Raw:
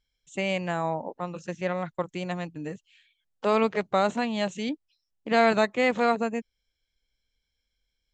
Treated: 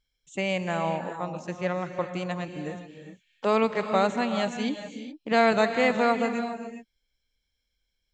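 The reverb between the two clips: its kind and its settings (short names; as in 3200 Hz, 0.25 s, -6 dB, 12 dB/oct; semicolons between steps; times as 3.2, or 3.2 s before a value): non-linear reverb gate 0.44 s rising, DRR 8 dB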